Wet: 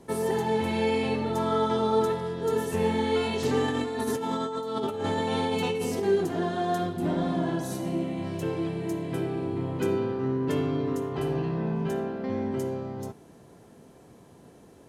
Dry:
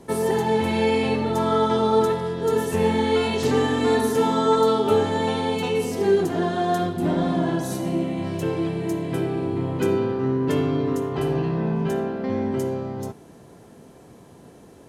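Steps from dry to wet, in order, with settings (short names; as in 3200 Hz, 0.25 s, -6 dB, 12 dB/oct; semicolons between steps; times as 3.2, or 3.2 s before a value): 3.68–6.03 negative-ratio compressor -24 dBFS, ratio -1; gain -5 dB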